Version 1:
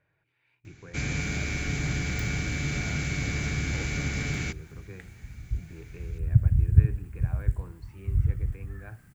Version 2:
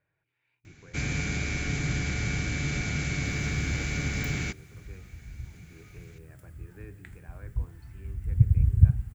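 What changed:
speech −6.0 dB
second sound: entry +2.05 s

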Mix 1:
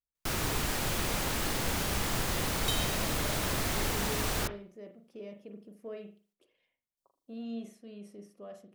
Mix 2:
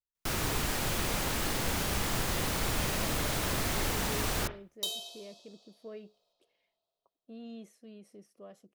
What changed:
speech: send off
second sound: entry +2.15 s

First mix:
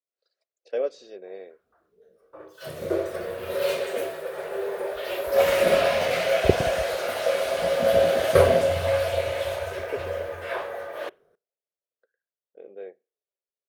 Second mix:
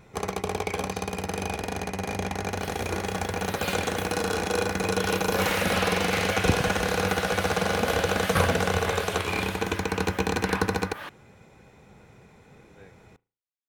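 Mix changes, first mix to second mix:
first sound: unmuted
master: add flat-topped bell 500 Hz −15.5 dB 1.1 octaves

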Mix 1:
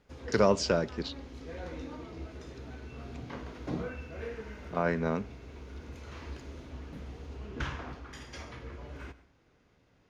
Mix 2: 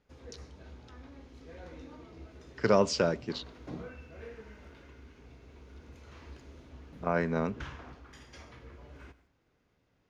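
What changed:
speech: entry +2.30 s
background −6.5 dB

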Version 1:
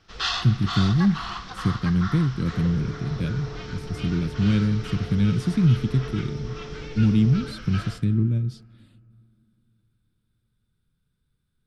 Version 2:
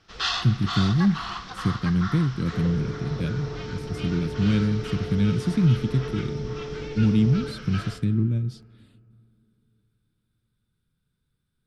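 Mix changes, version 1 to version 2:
second sound: send on
master: add low-shelf EQ 67 Hz −6 dB

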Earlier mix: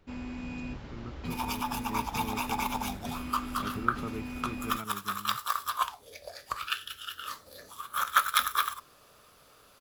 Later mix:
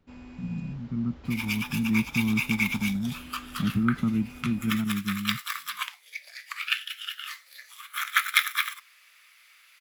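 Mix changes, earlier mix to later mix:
speech: add low shelf with overshoot 320 Hz +10.5 dB, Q 3
first sound −6.5 dB
second sound: add high-pass with resonance 2,100 Hz, resonance Q 6

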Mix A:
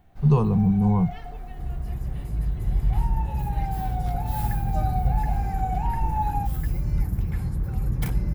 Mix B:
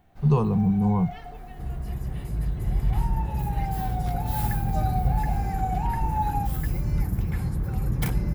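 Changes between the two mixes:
second sound +3.5 dB
master: add low-shelf EQ 100 Hz −6.5 dB

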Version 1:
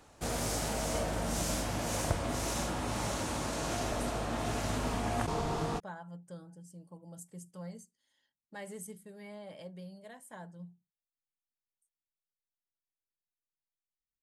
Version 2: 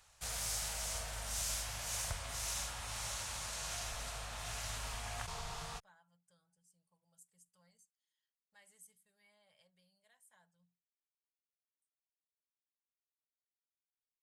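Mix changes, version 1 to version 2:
speech −11.5 dB
master: add guitar amp tone stack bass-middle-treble 10-0-10

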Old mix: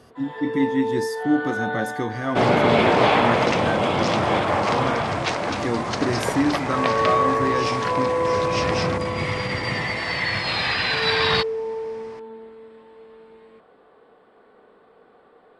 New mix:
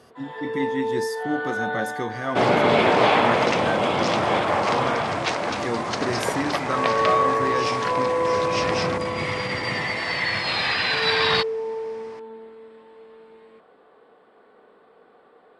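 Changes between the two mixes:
speech: add parametric band 290 Hz −7 dB 0.31 octaves
master: add low-shelf EQ 110 Hz −10.5 dB

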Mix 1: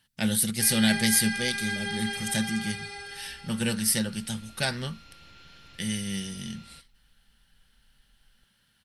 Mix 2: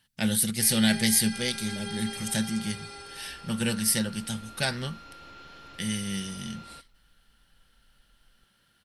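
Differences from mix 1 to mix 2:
first sound: add parametric band 1,500 Hz −12 dB 1.6 octaves
second sound: add flat-topped bell 630 Hz +9 dB 2.9 octaves

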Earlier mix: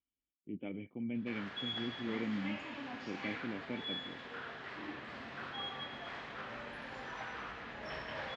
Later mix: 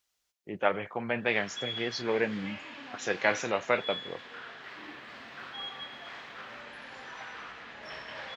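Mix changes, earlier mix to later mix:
speech: remove formant resonators in series i
master: add spectral tilt +2 dB per octave

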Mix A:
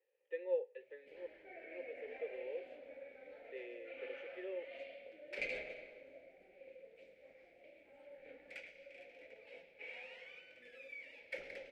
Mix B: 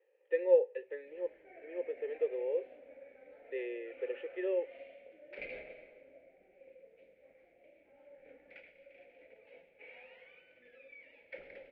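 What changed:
speech +12.0 dB
master: add high-frequency loss of the air 390 metres

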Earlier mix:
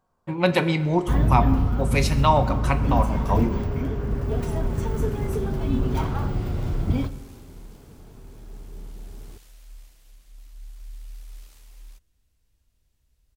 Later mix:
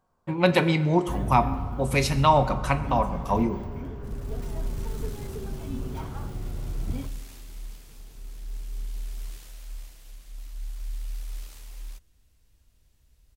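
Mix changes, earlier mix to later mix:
first sound −10.0 dB
second sound +6.0 dB

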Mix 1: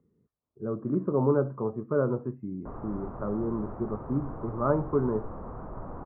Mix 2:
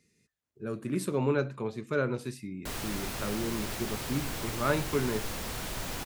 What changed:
speech −4.0 dB
master: remove elliptic low-pass filter 1,200 Hz, stop band 80 dB

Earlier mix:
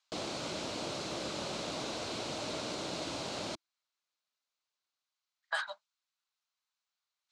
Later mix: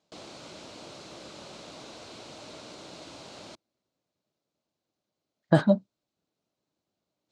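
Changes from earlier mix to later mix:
speech: remove inverse Chebyshev high-pass filter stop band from 320 Hz, stop band 60 dB
background −7.0 dB

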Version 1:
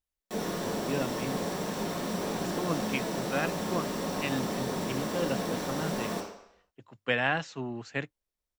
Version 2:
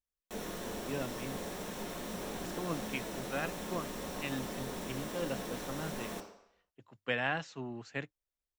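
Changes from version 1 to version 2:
speech −5.5 dB
background: send −10.0 dB

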